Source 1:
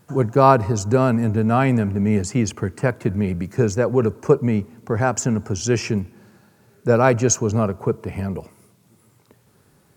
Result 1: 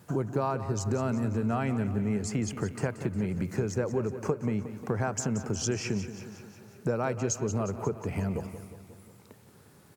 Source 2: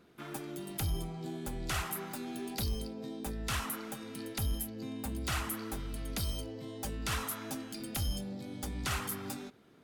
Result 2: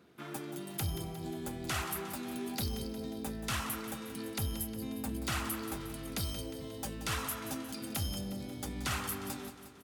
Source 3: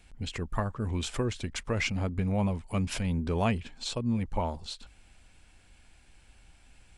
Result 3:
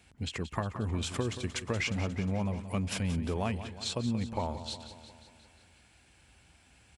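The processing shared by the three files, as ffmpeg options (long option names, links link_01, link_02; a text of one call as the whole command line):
ffmpeg -i in.wav -filter_complex "[0:a]highpass=frequency=63:width=0.5412,highpass=frequency=63:width=1.3066,acompressor=threshold=-27dB:ratio=6,asplit=2[link_01][link_02];[link_02]aecho=0:1:179|358|537|716|895|1074|1253:0.251|0.151|0.0904|0.0543|0.0326|0.0195|0.0117[link_03];[link_01][link_03]amix=inputs=2:normalize=0" out.wav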